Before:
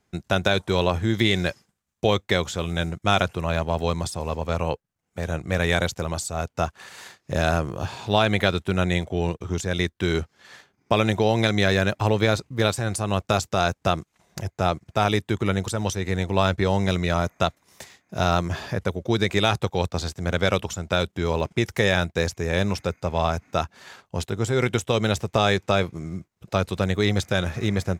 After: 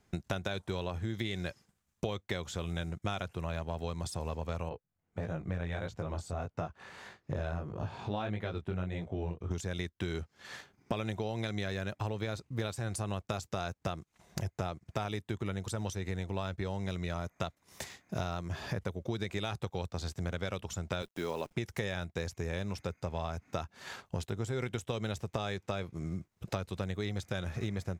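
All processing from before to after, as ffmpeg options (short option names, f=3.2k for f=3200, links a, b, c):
-filter_complex "[0:a]asettb=1/sr,asplit=3[a][b][c];[a]atrim=end=4.694[d];[b]atrim=start=4.69:end=9.51,asetpts=PTS-STARTPTS,afade=t=in:d=0.004:c=qsin,afade=t=out:st=4.816:d=0.004:c=qsin,lowpass=f=1.6k:p=1,flanger=delay=18:depth=5.1:speed=1.6[e];[c]atrim=start=9.506[f];[d][e]acrossfade=d=0.004:c1=hsin:c2=qsin[g];[g][f]acrossfade=d=0.004:c1=qsin:c2=hsin,asettb=1/sr,asplit=3[h][i][j];[h]atrim=end=21.024[k];[i]atrim=start=21.02:end=21.53,asetpts=PTS-STARTPTS,afade=t=in:d=0.004:c=qsin,afade=t=out:st=0.506:d=0.004:c=qsin,highpass=230,acrusher=bits=8:dc=4:mix=0:aa=0.000001[l];[j]atrim=start=21.526[m];[k][l]acrossfade=d=0.004:c1=hsin:c2=qsin[n];[n][m]acrossfade=d=0.004:c1=qsin:c2=hsin,lowshelf=f=130:g=5,acompressor=threshold=-33dB:ratio=6"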